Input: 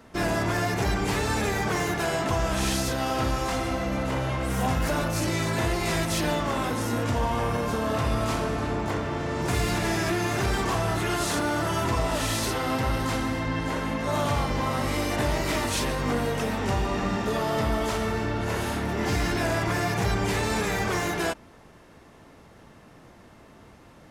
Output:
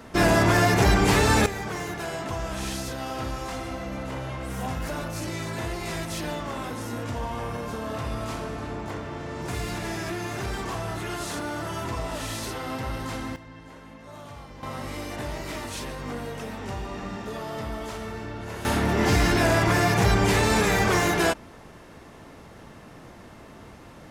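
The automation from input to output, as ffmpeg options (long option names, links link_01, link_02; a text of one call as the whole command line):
ffmpeg -i in.wav -af "asetnsamples=nb_out_samples=441:pad=0,asendcmd='1.46 volume volume -5.5dB;13.36 volume volume -17dB;14.63 volume volume -7.5dB;18.65 volume volume 5dB',volume=6.5dB" out.wav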